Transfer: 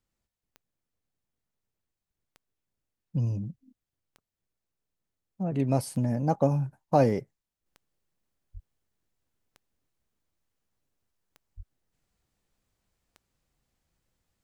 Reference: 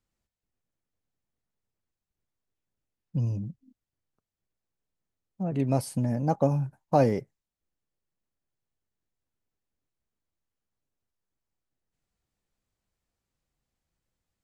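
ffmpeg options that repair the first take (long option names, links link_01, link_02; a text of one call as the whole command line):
ffmpeg -i in.wav -filter_complex "[0:a]adeclick=threshold=4,asplit=3[link_01][link_02][link_03];[link_01]afade=type=out:start_time=8.53:duration=0.02[link_04];[link_02]highpass=frequency=140:width=0.5412,highpass=frequency=140:width=1.3066,afade=type=in:start_time=8.53:duration=0.02,afade=type=out:start_time=8.65:duration=0.02[link_05];[link_03]afade=type=in:start_time=8.65:duration=0.02[link_06];[link_04][link_05][link_06]amix=inputs=3:normalize=0,asplit=3[link_07][link_08][link_09];[link_07]afade=type=out:start_time=11.56:duration=0.02[link_10];[link_08]highpass=frequency=140:width=0.5412,highpass=frequency=140:width=1.3066,afade=type=in:start_time=11.56:duration=0.02,afade=type=out:start_time=11.68:duration=0.02[link_11];[link_09]afade=type=in:start_time=11.68:duration=0.02[link_12];[link_10][link_11][link_12]amix=inputs=3:normalize=0,asetnsamples=nb_out_samples=441:pad=0,asendcmd='7.66 volume volume -5.5dB',volume=0dB" out.wav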